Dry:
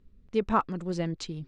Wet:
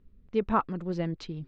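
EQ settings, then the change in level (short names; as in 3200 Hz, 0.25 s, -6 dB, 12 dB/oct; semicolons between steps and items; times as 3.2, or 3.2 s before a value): air absorption 170 m; 0.0 dB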